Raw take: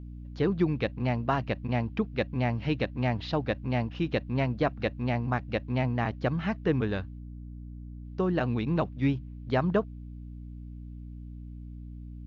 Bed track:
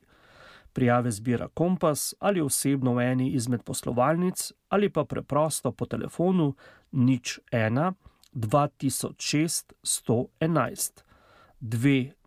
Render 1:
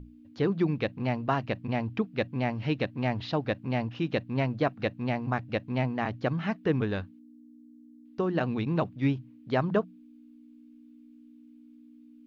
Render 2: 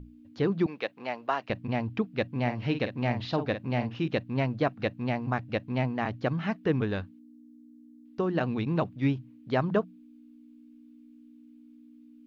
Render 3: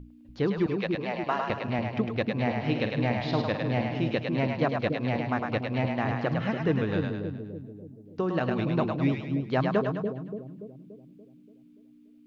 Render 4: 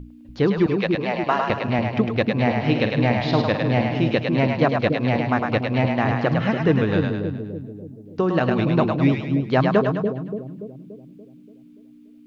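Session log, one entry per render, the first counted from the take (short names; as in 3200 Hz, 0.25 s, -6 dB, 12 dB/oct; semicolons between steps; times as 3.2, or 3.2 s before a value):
notches 60/120/180 Hz
0.66–1.5 HPF 480 Hz; 2.29–4.08 doubler 49 ms -9 dB
split-band echo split 500 Hz, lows 0.288 s, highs 0.104 s, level -3.5 dB
gain +7.5 dB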